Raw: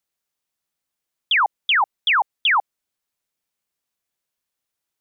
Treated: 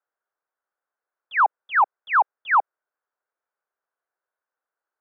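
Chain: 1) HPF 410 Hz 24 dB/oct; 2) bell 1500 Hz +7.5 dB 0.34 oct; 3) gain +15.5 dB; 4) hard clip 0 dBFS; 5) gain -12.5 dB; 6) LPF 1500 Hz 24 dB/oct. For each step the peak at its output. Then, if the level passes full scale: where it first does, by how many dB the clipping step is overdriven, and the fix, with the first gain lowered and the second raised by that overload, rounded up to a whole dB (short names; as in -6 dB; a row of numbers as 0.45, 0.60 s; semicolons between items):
-13.5, -6.0, +9.5, 0.0, -12.5, -11.5 dBFS; step 3, 9.5 dB; step 3 +5.5 dB, step 5 -2.5 dB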